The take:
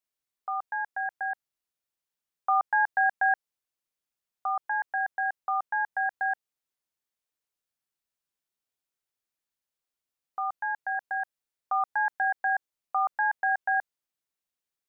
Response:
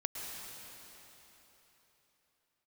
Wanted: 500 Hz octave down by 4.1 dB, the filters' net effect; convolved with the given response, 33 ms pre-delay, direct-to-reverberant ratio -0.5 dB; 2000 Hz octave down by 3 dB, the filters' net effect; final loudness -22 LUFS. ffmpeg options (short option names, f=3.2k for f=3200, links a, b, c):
-filter_complex "[0:a]equalizer=f=500:t=o:g=-7,equalizer=f=2k:t=o:g=-3.5,asplit=2[a][b];[1:a]atrim=start_sample=2205,adelay=33[c];[b][c]afir=irnorm=-1:irlink=0,volume=-1.5dB[d];[a][d]amix=inputs=2:normalize=0,volume=7.5dB"